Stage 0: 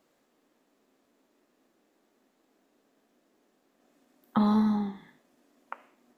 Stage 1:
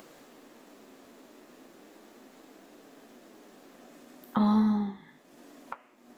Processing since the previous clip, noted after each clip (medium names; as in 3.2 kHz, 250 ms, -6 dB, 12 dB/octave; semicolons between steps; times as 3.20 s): upward compressor, threshold -37 dBFS; flange 0.37 Hz, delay 5.6 ms, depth 7.5 ms, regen -57%; trim +3.5 dB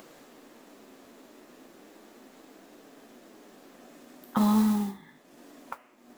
modulation noise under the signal 20 dB; trim +1 dB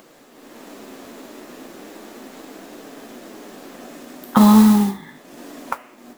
level rider gain up to 11.5 dB; companded quantiser 6-bit; trim +2 dB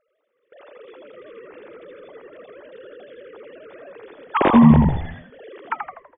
formants replaced by sine waves; gate with hold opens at -37 dBFS; on a send: frequency-shifting echo 82 ms, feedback 48%, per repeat -79 Hz, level -5 dB; on the sum: trim -2.5 dB